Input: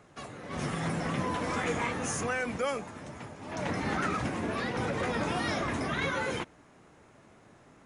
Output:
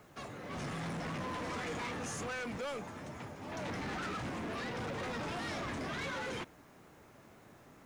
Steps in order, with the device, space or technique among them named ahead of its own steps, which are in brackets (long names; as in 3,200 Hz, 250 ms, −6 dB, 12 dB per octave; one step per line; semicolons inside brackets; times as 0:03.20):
compact cassette (soft clipping −35.5 dBFS, distortion −8 dB; low-pass filter 8,500 Hz 12 dB per octave; tape wow and flutter 29 cents; white noise bed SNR 33 dB)
level −1 dB